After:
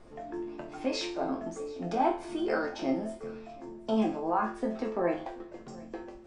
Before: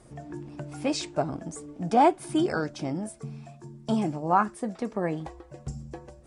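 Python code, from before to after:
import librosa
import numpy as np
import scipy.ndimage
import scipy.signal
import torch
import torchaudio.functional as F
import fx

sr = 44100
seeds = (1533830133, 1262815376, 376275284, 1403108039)

p1 = scipy.signal.sosfilt(scipy.signal.butter(4, 230.0, 'highpass', fs=sr, output='sos'), x)
p2 = fx.high_shelf(p1, sr, hz=8100.0, db=9.0)
p3 = fx.over_compress(p2, sr, threshold_db=-29.0, ratio=-0.5)
p4 = p2 + F.gain(torch.from_numpy(p3), 2.0).numpy()
p5 = fx.resonator_bank(p4, sr, root=41, chord='major', decay_s=0.4)
p6 = fx.dmg_noise_colour(p5, sr, seeds[0], colour='brown', level_db=-63.0)
p7 = fx.air_absorb(p6, sr, metres=170.0)
p8 = p7 + fx.echo_single(p7, sr, ms=731, db=-22.0, dry=0)
y = F.gain(torch.from_numpy(p8), 7.0).numpy()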